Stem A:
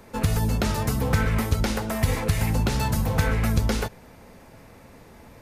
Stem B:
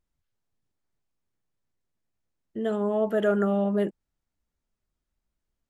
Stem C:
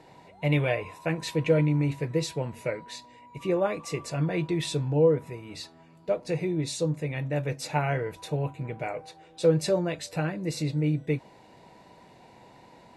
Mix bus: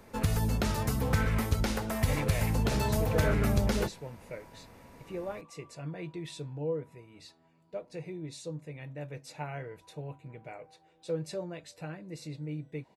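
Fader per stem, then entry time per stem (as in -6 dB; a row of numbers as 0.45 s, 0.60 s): -5.5 dB, -10.0 dB, -12.0 dB; 0.00 s, 0.00 s, 1.65 s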